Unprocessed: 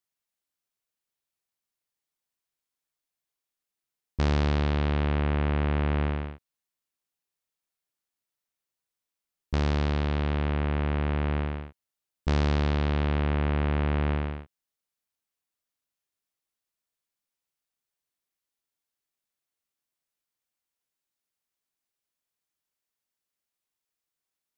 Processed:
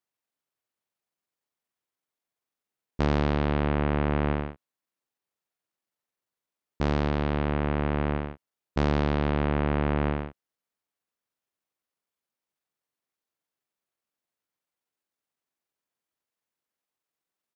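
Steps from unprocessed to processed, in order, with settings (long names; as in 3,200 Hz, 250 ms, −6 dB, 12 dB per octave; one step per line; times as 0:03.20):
high-pass filter 170 Hz 6 dB per octave
high-shelf EQ 2,200 Hz −9.5 dB
tempo change 1.4×
level +5 dB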